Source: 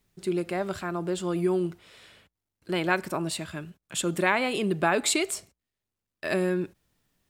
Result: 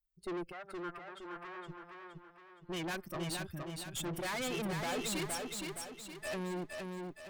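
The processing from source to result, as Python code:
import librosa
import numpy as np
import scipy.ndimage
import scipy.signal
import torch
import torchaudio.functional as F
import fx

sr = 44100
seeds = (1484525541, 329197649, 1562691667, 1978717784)

p1 = fx.bin_expand(x, sr, power=2.0)
p2 = fx.tube_stage(p1, sr, drive_db=42.0, bias=0.65)
p3 = fx.bandpass_q(p2, sr, hz=1500.0, q=1.4, at=(0.51, 1.68), fade=0.02)
p4 = p3 + fx.echo_feedback(p3, sr, ms=467, feedback_pct=44, wet_db=-4, dry=0)
y = p4 * 10.0 ** (5.5 / 20.0)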